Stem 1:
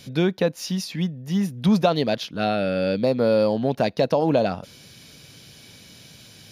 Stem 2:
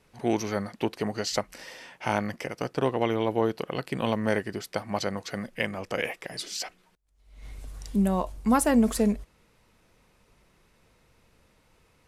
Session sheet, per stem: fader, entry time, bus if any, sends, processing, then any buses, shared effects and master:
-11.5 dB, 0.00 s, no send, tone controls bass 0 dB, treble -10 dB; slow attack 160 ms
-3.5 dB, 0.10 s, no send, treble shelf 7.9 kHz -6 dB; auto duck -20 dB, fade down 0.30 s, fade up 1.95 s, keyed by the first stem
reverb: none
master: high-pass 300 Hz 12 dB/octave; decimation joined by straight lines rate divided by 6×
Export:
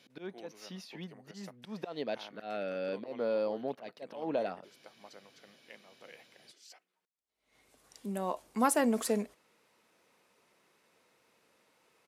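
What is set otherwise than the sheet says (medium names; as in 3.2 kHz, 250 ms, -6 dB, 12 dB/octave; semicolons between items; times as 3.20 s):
stem 2: missing treble shelf 7.9 kHz -6 dB; master: missing decimation joined by straight lines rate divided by 6×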